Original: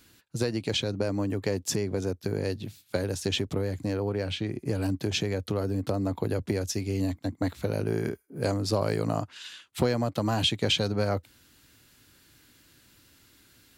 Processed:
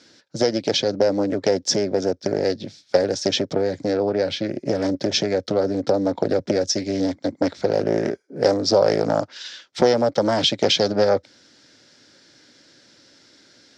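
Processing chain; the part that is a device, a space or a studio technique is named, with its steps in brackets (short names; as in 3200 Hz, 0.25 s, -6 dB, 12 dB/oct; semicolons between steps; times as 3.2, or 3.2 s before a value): full-range speaker at full volume (Doppler distortion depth 0.63 ms; speaker cabinet 210–6100 Hz, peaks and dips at 560 Hz +8 dB, 1100 Hz -7 dB, 2700 Hz -8 dB, 5400 Hz +8 dB); gain +8 dB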